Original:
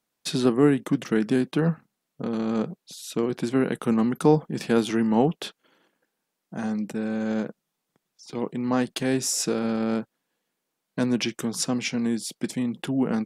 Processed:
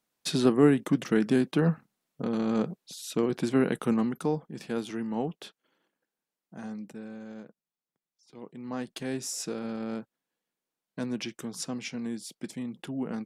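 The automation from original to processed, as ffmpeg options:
-af "volume=2.11,afade=t=out:st=3.77:d=0.53:silence=0.354813,afade=t=out:st=6.73:d=0.6:silence=0.473151,afade=t=in:st=8.35:d=0.67:silence=0.398107"

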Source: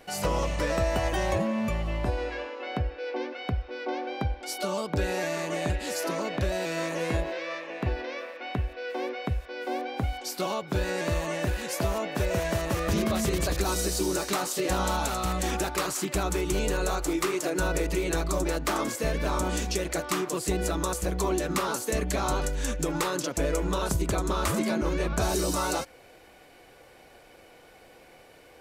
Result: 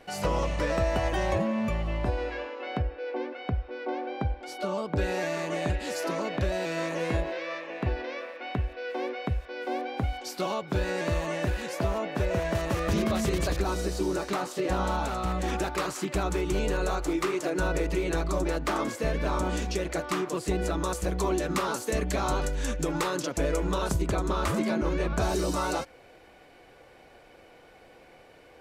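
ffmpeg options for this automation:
-af "asetnsamples=n=441:p=0,asendcmd='2.82 lowpass f 1900;4.98 lowpass f 4900;11.69 lowpass f 2700;12.55 lowpass f 5300;13.58 lowpass f 2000;15.48 lowpass f 3400;20.85 lowpass f 6100;23.98 lowpass f 3700',lowpass=f=4400:p=1"

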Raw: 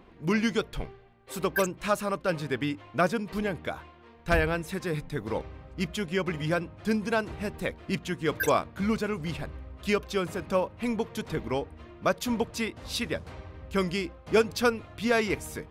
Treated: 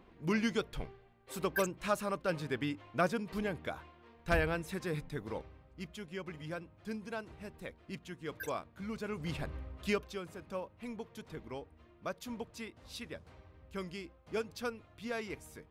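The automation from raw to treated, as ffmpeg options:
-af "volume=2.11,afade=t=out:st=5:d=0.65:silence=0.398107,afade=t=in:st=8.92:d=0.67:silence=0.237137,afade=t=out:st=9.59:d=0.6:silence=0.237137"

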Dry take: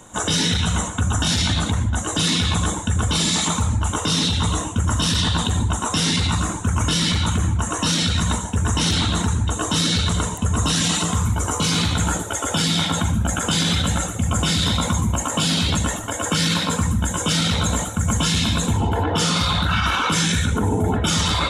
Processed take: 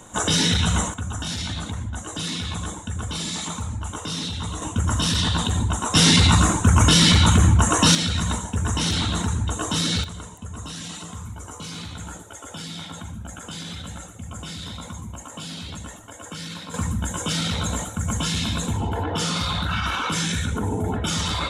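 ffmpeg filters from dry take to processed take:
-af "asetnsamples=n=441:p=0,asendcmd='0.94 volume volume -9dB;4.62 volume volume -2dB;5.95 volume volume 5dB;7.95 volume volume -3.5dB;10.04 volume volume -15dB;16.74 volume volume -5dB',volume=1"

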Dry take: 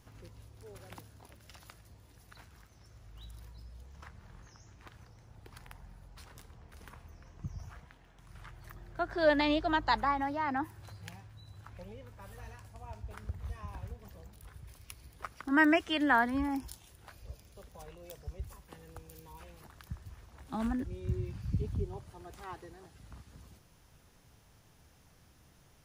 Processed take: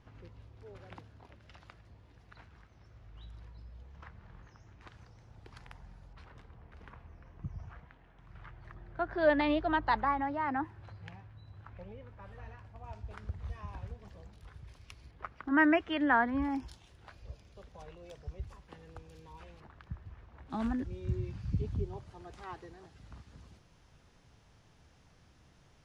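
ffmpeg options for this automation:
-af "asetnsamples=n=441:p=0,asendcmd='4.81 lowpass f 5800;6.13 lowpass f 2600;12.84 lowpass f 5000;15.11 lowpass f 2400;16.42 lowpass f 4600;19.6 lowpass f 2500;20.5 lowpass f 5800',lowpass=3200"

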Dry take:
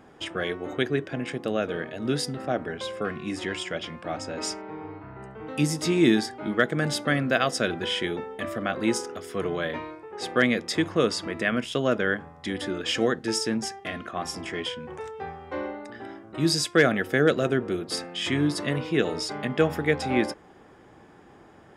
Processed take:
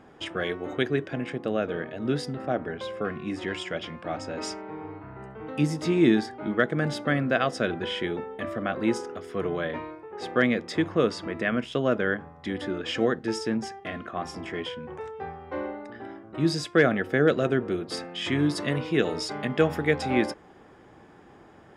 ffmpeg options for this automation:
-af "asetnsamples=n=441:p=0,asendcmd='1.24 lowpass f 2300;3.48 lowpass f 3900;5.5 lowpass f 2200;17.3 lowpass f 3600;18.39 lowpass f 7900',lowpass=f=5600:p=1"

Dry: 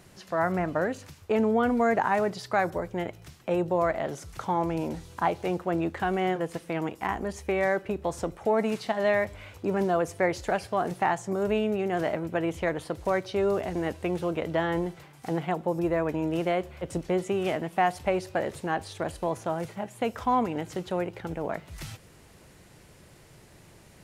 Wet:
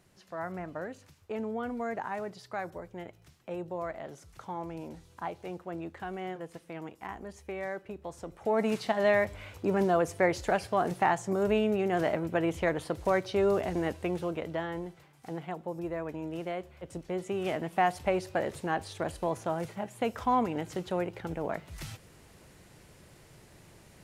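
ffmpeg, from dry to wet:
-af "volume=2.11,afade=t=in:st=8.25:d=0.47:silence=0.298538,afade=t=out:st=13.69:d=1.05:silence=0.375837,afade=t=in:st=17.04:d=0.68:silence=0.446684"

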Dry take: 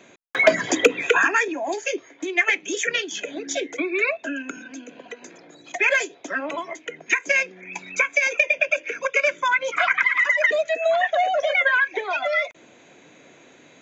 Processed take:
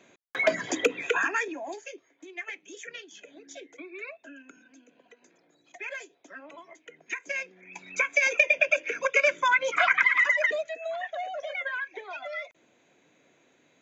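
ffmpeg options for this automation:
-af "volume=2.51,afade=t=out:st=1.53:d=0.41:silence=0.316228,afade=t=in:st=6.53:d=1.21:silence=0.421697,afade=t=in:st=7.74:d=0.56:silence=0.375837,afade=t=out:st=10.17:d=0.58:silence=0.266073"

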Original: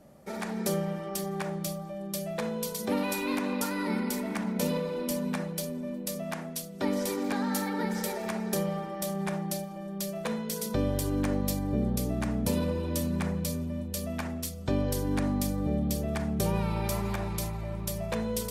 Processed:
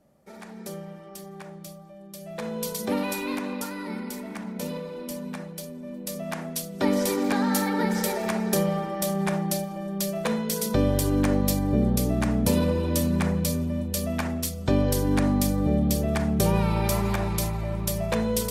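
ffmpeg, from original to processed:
-af "volume=4.47,afade=t=in:st=2.18:d=0.52:silence=0.266073,afade=t=out:st=2.7:d=1.13:silence=0.446684,afade=t=in:st=5.79:d=0.95:silence=0.334965"

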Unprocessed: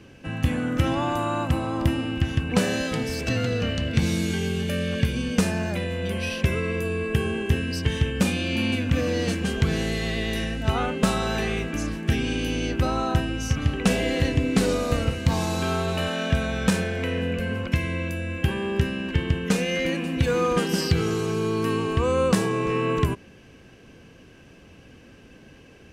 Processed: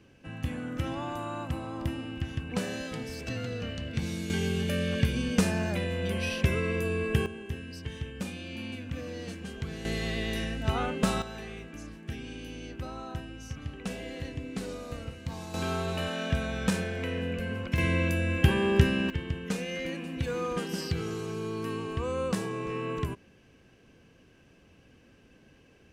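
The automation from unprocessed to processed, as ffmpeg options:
-af "asetnsamples=n=441:p=0,asendcmd='4.3 volume volume -3dB;7.26 volume volume -14dB;9.85 volume volume -5dB;11.22 volume volume -15dB;15.54 volume volume -6dB;17.78 volume volume 1.5dB;19.1 volume volume -9.5dB',volume=0.316"

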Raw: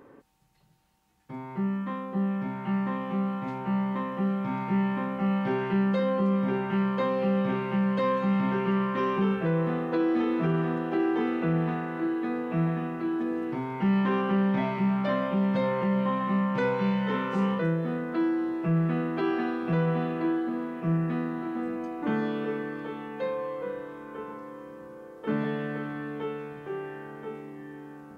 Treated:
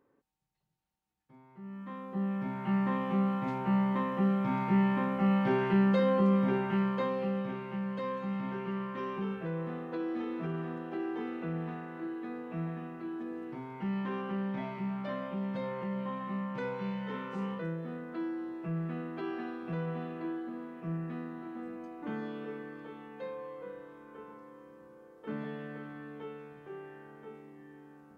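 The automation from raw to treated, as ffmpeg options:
-af "volume=0.944,afade=t=in:st=1.61:d=0.44:silence=0.251189,afade=t=in:st=2.05:d=0.9:silence=0.473151,afade=t=out:st=6.29:d=1.25:silence=0.334965"

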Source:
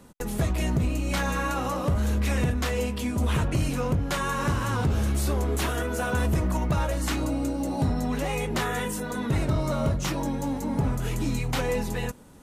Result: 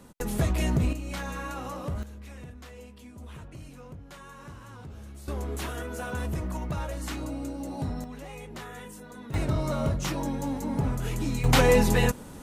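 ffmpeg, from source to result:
-af "asetnsamples=n=441:p=0,asendcmd='0.93 volume volume -8dB;2.03 volume volume -19dB;5.28 volume volume -7dB;8.04 volume volume -13.5dB;9.34 volume volume -2dB;11.44 volume volume 7.5dB',volume=1"

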